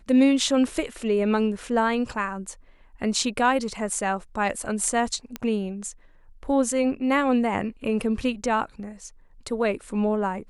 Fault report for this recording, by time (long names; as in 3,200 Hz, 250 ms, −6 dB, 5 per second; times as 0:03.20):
0:05.36: click −15 dBFS